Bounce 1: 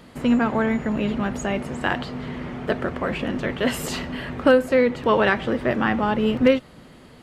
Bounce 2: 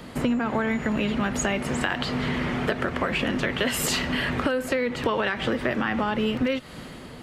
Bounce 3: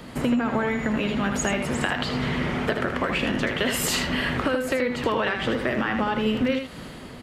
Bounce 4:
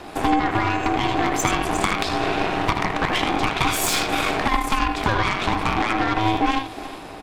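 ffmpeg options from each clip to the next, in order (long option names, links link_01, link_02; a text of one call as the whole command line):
ffmpeg -i in.wav -filter_complex "[0:a]acrossover=split=240|1300[link_01][link_02][link_03];[link_03]dynaudnorm=framelen=110:gausssize=9:maxgain=6dB[link_04];[link_01][link_02][link_04]amix=inputs=3:normalize=0,alimiter=limit=-11dB:level=0:latency=1:release=99,acompressor=threshold=-28dB:ratio=6,volume=6dB" out.wav
ffmpeg -i in.wav -af "aecho=1:1:79:0.473" out.wav
ffmpeg -i in.wav -af "aeval=exprs='val(0)*sin(2*PI*540*n/s)':channel_layout=same,aecho=1:1:360|720|1080:0.15|0.0389|0.0101,aeval=exprs='0.376*(cos(1*acos(clip(val(0)/0.376,-1,1)))-cos(1*PI/2))+0.0944*(cos(6*acos(clip(val(0)/0.376,-1,1)))-cos(6*PI/2))+0.0944*(cos(8*acos(clip(val(0)/0.376,-1,1)))-cos(8*PI/2))':channel_layout=same,volume=5.5dB" out.wav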